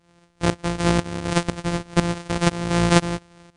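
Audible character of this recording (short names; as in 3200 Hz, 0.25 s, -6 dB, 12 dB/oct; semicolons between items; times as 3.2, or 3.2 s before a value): a buzz of ramps at a fixed pitch in blocks of 256 samples; tremolo saw up 2 Hz, depth 85%; MP3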